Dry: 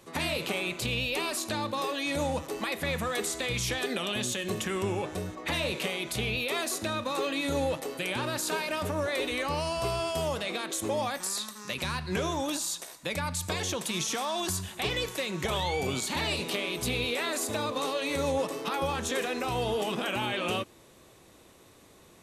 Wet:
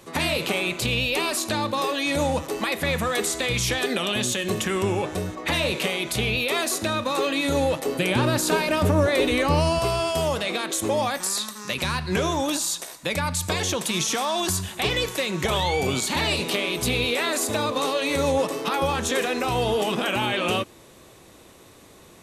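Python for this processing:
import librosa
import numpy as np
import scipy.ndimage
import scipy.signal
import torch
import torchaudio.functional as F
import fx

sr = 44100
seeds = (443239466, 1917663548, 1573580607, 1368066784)

y = fx.low_shelf(x, sr, hz=450.0, db=8.5, at=(7.86, 9.79))
y = y * librosa.db_to_amplitude(6.5)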